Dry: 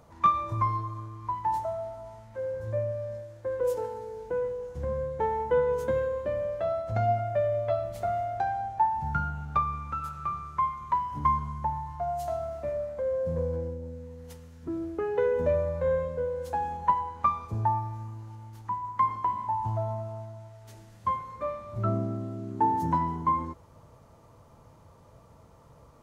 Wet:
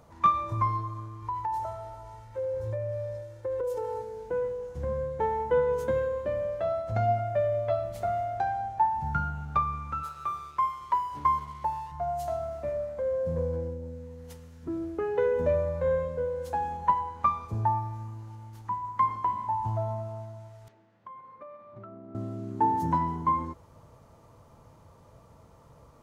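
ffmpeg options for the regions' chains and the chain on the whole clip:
-filter_complex "[0:a]asettb=1/sr,asplit=3[s0][s1][s2];[s0]atrim=end=1.224[s3];[s1]atrim=start=1.22:end=4.02,asetpts=PTS-STARTPTS,afade=t=in:d=0.004:c=qsin,afade=t=out:st=2.796:d=0.004:c=qsin,aecho=1:1:2.2:0.65,atrim=end_sample=123480,acompressor=threshold=0.0398:ratio=6:attack=3.2:release=140:knee=1:detection=peak[s4];[s2]atrim=start=4.016[s5];[s3][s4]acrossfade=d=0.004:c1=hsin:c2=qsin[s6];[s6][s5]acrossfade=d=0.004:c1=qsin:c2=hsin,asettb=1/sr,asplit=3[s7][s8][s9];[s7]atrim=end=10.034[s10];[s8]atrim=start=10.03:end=11.92,asetpts=PTS-STARTPTS,afade=t=in:d=0.004:c=qsin,afade=t=out:st=1.886:d=0.004:c=qsin,lowshelf=f=290:t=q:w=1.5:g=-7.5,aeval=exprs='sgn(val(0))*max(abs(val(0))-0.00211,0)':c=same[s11];[s9]atrim=start=11.916[s12];[s10][s11]acrossfade=d=0.004:c1=hsin:c2=qsin[s13];[s13][s12]acrossfade=d=0.004:c1=qsin:c2=hsin,asettb=1/sr,asplit=3[s14][s15][s16];[s14]atrim=end=20.684[s17];[s15]atrim=start=20.68:end=22.15,asetpts=PTS-STARTPTS,afade=t=in:d=0.004:c=qsin,afade=t=out:st=1.466:d=0.004:c=qsin,agate=range=0.447:threshold=0.0126:ratio=16:release=100:detection=peak,highpass=200,lowpass=2400,acompressor=threshold=0.00891:ratio=20:attack=3.2:release=140:knee=1:detection=peak[s18];[s16]atrim=start=22.146[s19];[s17][s18]acrossfade=d=0.004:c1=hsin:c2=qsin[s20];[s20][s19]acrossfade=d=0.004:c1=qsin:c2=hsin"

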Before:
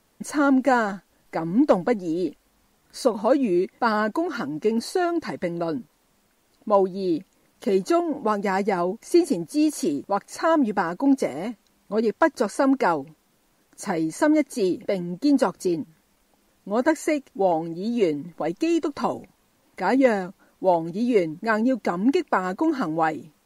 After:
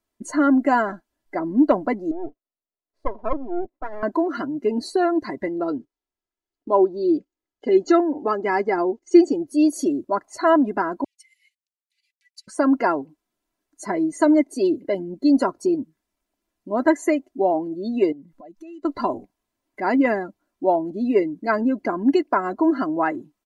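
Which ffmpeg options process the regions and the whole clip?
-filter_complex "[0:a]asettb=1/sr,asplit=3[s0][s1][s2];[s0]atrim=end=2.114[s3];[s1]atrim=start=2.11:end=4.03,asetpts=PTS-STARTPTS,afade=t=in:d=0.004:c=qsin,afade=t=out:st=1.916:d=0.004:c=qsin,agate=range=0.355:threshold=0.00141:ratio=16:release=100:detection=peak,bandpass=f=510:t=q:w=1.6,aeval=exprs='max(val(0),0)':c=same[s4];[s2]atrim=start=4.026[s5];[s3][s4]acrossfade=d=0.004:c1=hsin:c2=qsin[s6];[s6][s5]acrossfade=d=0.004:c1=qsin:c2=hsin,asettb=1/sr,asplit=3[s7][s8][s9];[s7]atrim=end=5.474[s10];[s8]atrim=start=5.47:end=9.47,asetpts=PTS-STARTPTS,afade=t=in:d=0.004:c=qsin,afade=t=out:st=3.996:d=0.004:c=qsin,agate=range=0.251:threshold=0.00631:ratio=16:release=100:detection=peak,lowpass=f=7700:w=0.5412,lowpass=f=7700:w=1.3066,aecho=1:1:2.4:0.37,atrim=end_sample=176400[s11];[s9]atrim=start=9.466[s12];[s10][s11]acrossfade=d=0.004:c1=hsin:c2=qsin[s13];[s13][s12]acrossfade=d=0.004:c1=qsin:c2=hsin,asettb=1/sr,asplit=3[s14][s15][s16];[s14]atrim=end=11.044[s17];[s15]atrim=start=11.04:end=12.48,asetpts=PTS-STARTPTS,afade=t=in:d=0.004:c=qsin,afade=t=out:st=1.436:d=0.004:c=qsin,acompressor=threshold=0.0316:ratio=5:attack=3.2:release=140:knee=1:detection=peak,aeval=exprs='sgn(val(0))*max(abs(val(0))-0.00251,0)':c=same,asuperpass=centerf=5700:order=20:qfactor=0.53[s18];[s16]atrim=start=12.476[s19];[s17][s18]acrossfade=d=0.004:c1=hsin:c2=qsin[s20];[s20][s19]acrossfade=d=0.004:c1=qsin:c2=hsin,asettb=1/sr,asplit=3[s21][s22][s23];[s21]atrim=end=18.124[s24];[s22]atrim=start=18.12:end=18.85,asetpts=PTS-STARTPTS,afade=t=in:d=0.004:c=qsin,afade=t=out:st=0.726:d=0.004:c=qsin,equalizer=f=340:t=o:w=1.2:g=-5.5,acompressor=threshold=0.01:ratio=8:attack=3.2:release=140:knee=1:detection=peak[s25];[s23]atrim=start=18.846[s26];[s24][s25]acrossfade=d=0.004:c1=hsin:c2=qsin[s27];[s27][s26]acrossfade=d=0.004:c1=qsin:c2=hsin,afftdn=nr=18:nf=-38,aecho=1:1:3:0.56"

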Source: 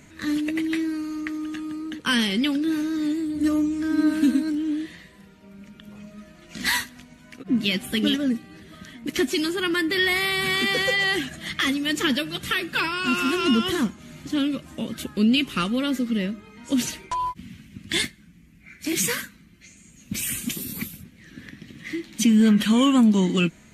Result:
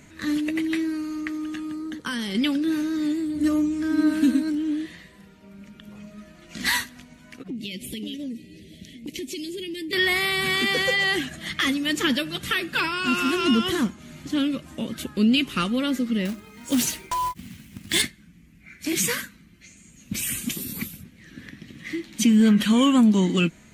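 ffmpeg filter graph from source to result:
-filter_complex "[0:a]asettb=1/sr,asplit=3[s0][s1][s2];[s0]atrim=end=1.744[s3];[s1]atrim=start=1.74:end=2.35,asetpts=PTS-STARTPTS,afade=t=in:d=0.004:c=qsin,afade=t=out:st=0.606:d=0.004:c=qsin,equalizer=f=2600:t=o:w=0.41:g=-9.5,acompressor=threshold=0.0562:ratio=6:attack=3.2:release=140:knee=1:detection=peak[s4];[s2]atrim=start=2.346[s5];[s3][s4]acrossfade=d=0.004:c1=hsin:c2=qsin[s6];[s6][s5]acrossfade=d=0.004:c1=qsin:c2=hsin,asettb=1/sr,asplit=3[s7][s8][s9];[s7]atrim=end=7.484[s10];[s8]atrim=start=7.48:end=9.93,asetpts=PTS-STARTPTS,afade=t=in:d=0.004:c=qsin,afade=t=out:st=2.446:d=0.004:c=qsin,asuperstop=centerf=1100:order=8:qfactor=0.69,acompressor=threshold=0.0316:ratio=6:attack=3.2:release=140:knee=1:detection=peak[s11];[s9]atrim=start=9.926[s12];[s10][s11]acrossfade=d=0.004:c1=hsin:c2=qsin[s13];[s13][s12]acrossfade=d=0.004:c1=qsin:c2=hsin,asettb=1/sr,asplit=3[s14][s15][s16];[s14]atrim=end=16.254[s17];[s15]atrim=start=16.25:end=18.02,asetpts=PTS-STARTPTS,afade=t=in:d=0.004:c=qsin,afade=t=out:st=1.766:d=0.004:c=qsin,highshelf=f=8100:g=11.5,acrusher=bits=3:mode=log:mix=0:aa=0.000001[s18];[s16]atrim=start=18.016[s19];[s17][s18]acrossfade=d=0.004:c1=hsin:c2=qsin[s20];[s20][s19]acrossfade=d=0.004:c1=qsin:c2=hsin"

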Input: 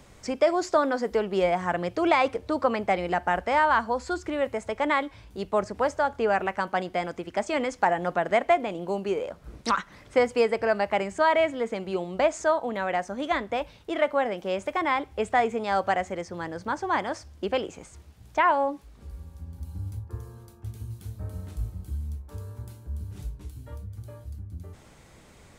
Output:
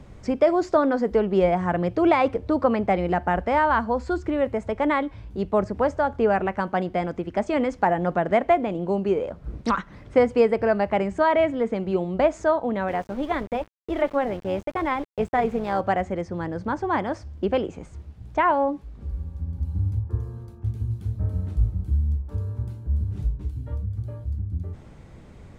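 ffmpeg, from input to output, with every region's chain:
-filter_complex "[0:a]asettb=1/sr,asplit=3[s0][s1][s2];[s0]atrim=end=12.884[s3];[s1]atrim=start=12.88:end=15.81,asetpts=PTS-STARTPTS,afade=t=in:d=0.004:c=qsin,afade=t=out:st=2.926:d=0.004:c=qsin,tremolo=f=270:d=0.462,aeval=exprs='val(0)*gte(abs(val(0)),0.00944)':c=same[s4];[s2]atrim=start=15.806[s5];[s3][s4]acrossfade=d=0.004:c1=hsin:c2=qsin[s6];[s6][s5]acrossfade=d=0.004:c1=qsin:c2=hsin,lowpass=f=2800:p=1,lowshelf=f=380:g=10.5"

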